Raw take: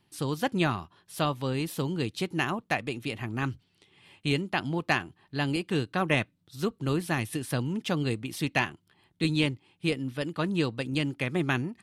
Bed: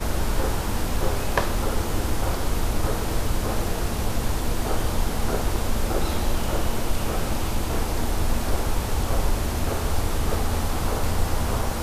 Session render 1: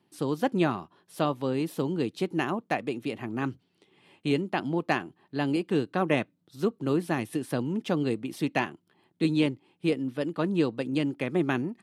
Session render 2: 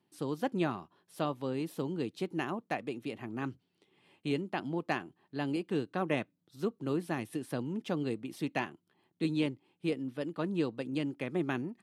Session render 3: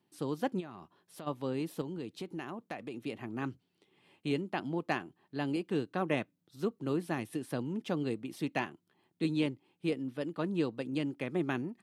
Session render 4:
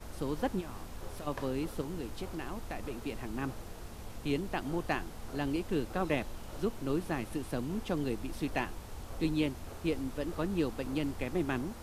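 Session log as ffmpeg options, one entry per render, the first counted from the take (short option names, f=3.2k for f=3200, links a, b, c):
-af "highpass=230,tiltshelf=f=970:g=6"
-af "volume=-6.5dB"
-filter_complex "[0:a]asplit=3[a][b][c];[a]afade=t=out:st=0.59:d=0.02[d];[b]acompressor=threshold=-43dB:ratio=4:attack=3.2:release=140:knee=1:detection=peak,afade=t=in:st=0.59:d=0.02,afade=t=out:st=1.26:d=0.02[e];[c]afade=t=in:st=1.26:d=0.02[f];[d][e][f]amix=inputs=3:normalize=0,asettb=1/sr,asplit=3[g][h][i];[g]atrim=end=1.814[j];[h]atrim=start=1.81:end=2.94,asetpts=PTS-STARTPTS,afade=t=in:d=0.004:c=qsin,afade=t=out:st=1.126:d=0.004:c=qsin,acompressor=threshold=-37dB:ratio=3:attack=3.2:release=140:knee=1:detection=peak[k];[i]atrim=start=2.936[l];[j][k]acrossfade=d=0.004:c1=hsin:c2=qsin[m];[m][l]acrossfade=d=0.004:c1=qsin:c2=hsin"
-filter_complex "[1:a]volume=-20dB[a];[0:a][a]amix=inputs=2:normalize=0"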